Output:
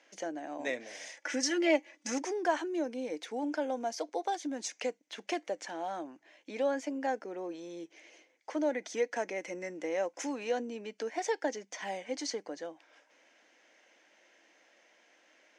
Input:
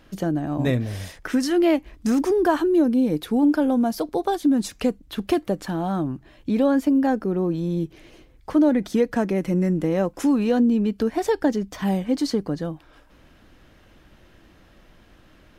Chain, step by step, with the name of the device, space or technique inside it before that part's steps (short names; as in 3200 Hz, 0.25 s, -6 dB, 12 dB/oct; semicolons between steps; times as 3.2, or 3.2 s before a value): 1.17–2.18 comb 3.5 ms, depth 99%; phone speaker on a table (speaker cabinet 380–7800 Hz, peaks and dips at 390 Hz -8 dB, 1200 Hz -9 dB, 2100 Hz +7 dB, 3900 Hz -4 dB, 6200 Hz +9 dB); gain -6.5 dB